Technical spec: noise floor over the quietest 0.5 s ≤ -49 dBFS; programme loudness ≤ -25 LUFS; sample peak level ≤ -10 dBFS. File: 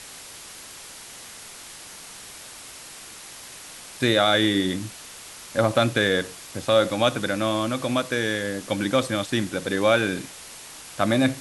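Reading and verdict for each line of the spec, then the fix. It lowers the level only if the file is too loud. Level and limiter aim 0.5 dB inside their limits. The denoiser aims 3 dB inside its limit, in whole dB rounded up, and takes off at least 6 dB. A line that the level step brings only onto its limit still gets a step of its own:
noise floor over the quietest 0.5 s -42 dBFS: fail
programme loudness -23.0 LUFS: fail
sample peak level -6.0 dBFS: fail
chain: noise reduction 8 dB, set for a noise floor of -42 dBFS; trim -2.5 dB; peak limiter -10.5 dBFS

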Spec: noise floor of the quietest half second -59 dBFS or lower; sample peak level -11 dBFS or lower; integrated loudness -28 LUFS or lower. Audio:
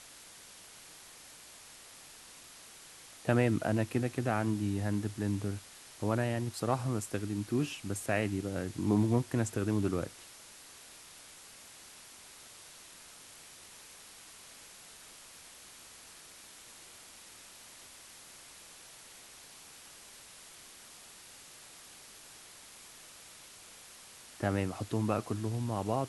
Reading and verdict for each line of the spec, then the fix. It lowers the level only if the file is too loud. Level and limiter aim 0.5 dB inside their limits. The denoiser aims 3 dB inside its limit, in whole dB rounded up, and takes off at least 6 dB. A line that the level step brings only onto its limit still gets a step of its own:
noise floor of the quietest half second -53 dBFS: fail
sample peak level -14.0 dBFS: pass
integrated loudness -33.0 LUFS: pass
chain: noise reduction 9 dB, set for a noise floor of -53 dBFS

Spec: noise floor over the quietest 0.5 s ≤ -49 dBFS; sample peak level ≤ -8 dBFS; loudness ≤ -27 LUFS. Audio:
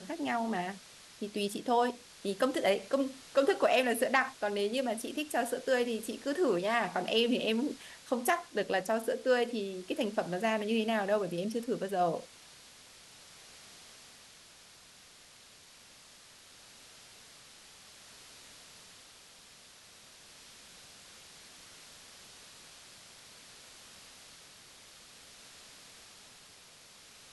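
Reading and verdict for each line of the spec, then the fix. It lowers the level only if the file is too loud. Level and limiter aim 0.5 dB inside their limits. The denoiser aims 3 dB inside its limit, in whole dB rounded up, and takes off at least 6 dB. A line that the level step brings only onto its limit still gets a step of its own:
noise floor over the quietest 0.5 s -57 dBFS: pass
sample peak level -12.5 dBFS: pass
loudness -32.0 LUFS: pass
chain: none needed

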